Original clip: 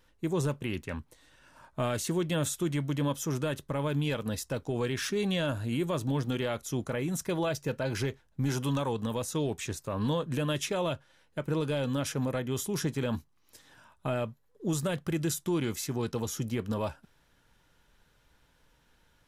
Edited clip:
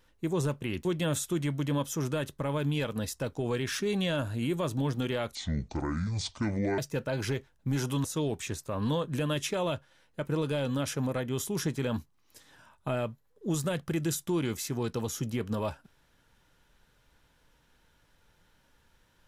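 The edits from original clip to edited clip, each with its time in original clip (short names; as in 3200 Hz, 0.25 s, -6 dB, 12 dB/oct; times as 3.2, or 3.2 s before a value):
0.85–2.15 cut
6.65–7.51 speed 60%
8.77–9.23 cut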